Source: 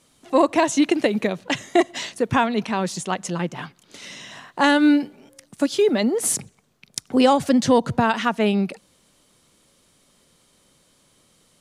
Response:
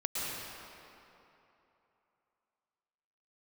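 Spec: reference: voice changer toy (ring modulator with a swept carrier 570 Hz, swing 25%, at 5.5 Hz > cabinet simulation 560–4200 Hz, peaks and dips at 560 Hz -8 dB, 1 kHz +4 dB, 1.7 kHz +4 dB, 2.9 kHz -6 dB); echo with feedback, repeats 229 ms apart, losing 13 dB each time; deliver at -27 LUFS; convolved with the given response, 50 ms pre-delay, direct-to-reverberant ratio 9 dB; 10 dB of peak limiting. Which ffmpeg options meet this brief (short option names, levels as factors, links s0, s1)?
-filter_complex "[0:a]alimiter=limit=0.224:level=0:latency=1,aecho=1:1:229|458|687:0.224|0.0493|0.0108,asplit=2[s0][s1];[1:a]atrim=start_sample=2205,adelay=50[s2];[s1][s2]afir=irnorm=-1:irlink=0,volume=0.178[s3];[s0][s3]amix=inputs=2:normalize=0,aeval=exprs='val(0)*sin(2*PI*570*n/s+570*0.25/5.5*sin(2*PI*5.5*n/s))':c=same,highpass=560,equalizer=f=560:t=q:w=4:g=-8,equalizer=f=1000:t=q:w=4:g=4,equalizer=f=1700:t=q:w=4:g=4,equalizer=f=2900:t=q:w=4:g=-6,lowpass=f=4200:w=0.5412,lowpass=f=4200:w=1.3066,volume=1.12"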